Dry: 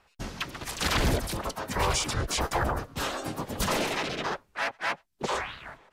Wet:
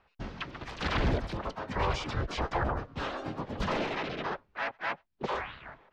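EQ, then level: air absorption 210 m; high shelf 8600 Hz -4.5 dB; -2.0 dB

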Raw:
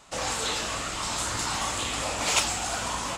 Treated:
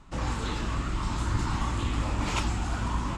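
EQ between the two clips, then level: tilt -4.5 dB/oct; low shelf 200 Hz -4 dB; band shelf 580 Hz -8.5 dB 1 oct; -1.5 dB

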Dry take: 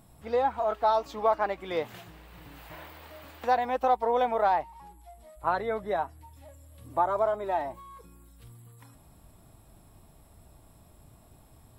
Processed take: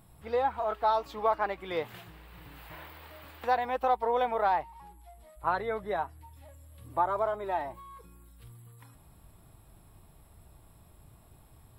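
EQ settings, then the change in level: fifteen-band EQ 250 Hz -5 dB, 630 Hz -4 dB, 6300 Hz -7 dB; 0.0 dB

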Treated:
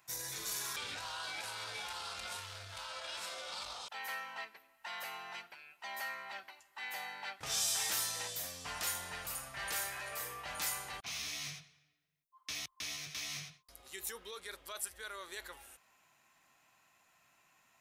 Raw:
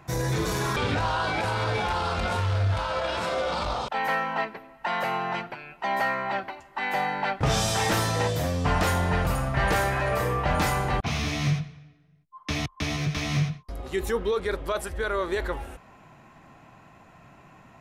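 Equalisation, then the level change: pre-emphasis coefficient 0.97; -1.5 dB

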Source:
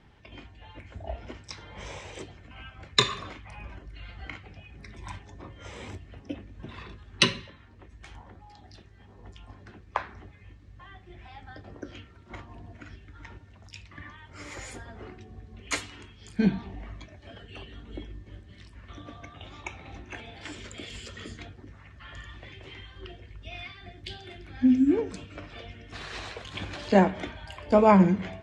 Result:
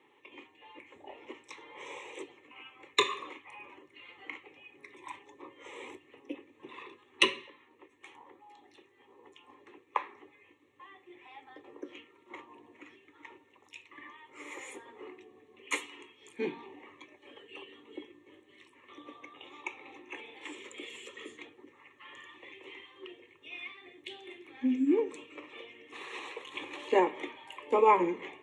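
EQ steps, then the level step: HPF 220 Hz 24 dB/oct; fixed phaser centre 1000 Hz, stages 8; notch 3100 Hz, Q 30; 0.0 dB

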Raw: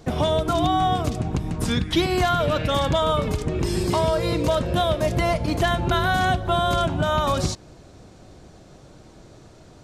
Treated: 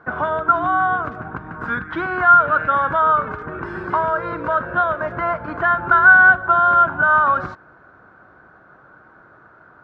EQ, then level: HPF 170 Hz 6 dB/oct; synth low-pass 1500 Hz, resonance Q 9.2; bell 1100 Hz +8 dB 0.98 oct; -5.5 dB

